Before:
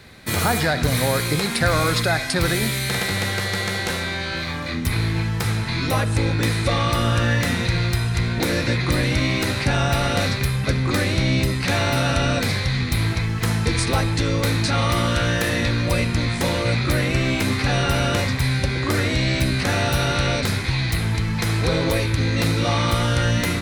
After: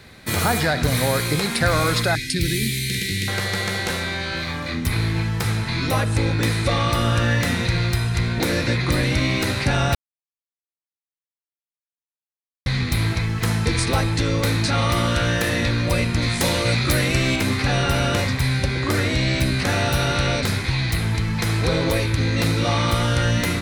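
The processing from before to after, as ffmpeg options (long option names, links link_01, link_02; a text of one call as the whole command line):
ffmpeg -i in.wav -filter_complex "[0:a]asettb=1/sr,asplit=3[link_01][link_02][link_03];[link_01]atrim=end=2.154[link_04];[link_02]atrim=start=2.15:end=3.28,asetpts=PTS-STARTPTS,afade=type=in:duration=0.004:curve=qsin,afade=type=out:start_time=1.126:duration=0.004:curve=qsin,asuperstop=centerf=870:order=8:qfactor=0.55[link_05];[link_03]atrim=start=3.276[link_06];[link_04][link_05]acrossfade=duration=0.004:curve1=hsin:curve2=qsin[link_07];[link_07][link_06]acrossfade=duration=0.004:curve1=qsin:curve2=hsin,asettb=1/sr,asplit=3[link_08][link_09][link_10];[link_08]atrim=end=16.224[link_11];[link_09]atrim=start=16.22:end=17.36,asetpts=PTS-STARTPTS,afade=type=in:duration=0.004:curve=qsin,afade=type=out:start_time=1.136:duration=0.004:curve=qsin,highshelf=frequency=3600:gain=7.5[link_12];[link_10]atrim=start=17.356[link_13];[link_11][link_12]acrossfade=duration=0.004:curve1=hsin:curve2=qsin[link_14];[link_14][link_13]acrossfade=duration=0.004:curve1=qsin:curve2=hsin,asplit=3[link_15][link_16][link_17];[link_15]atrim=end=9.95,asetpts=PTS-STARTPTS,afade=type=out:start_time=9.946:duration=0.004:curve=hsin[link_18];[link_16]atrim=start=9.95:end=12.66,asetpts=PTS-STARTPTS,volume=0[link_19];[link_17]atrim=start=12.66,asetpts=PTS-STARTPTS,afade=type=in:duration=0.004:curve=hsin[link_20];[link_18][link_19][link_20]concat=n=3:v=0:a=1" out.wav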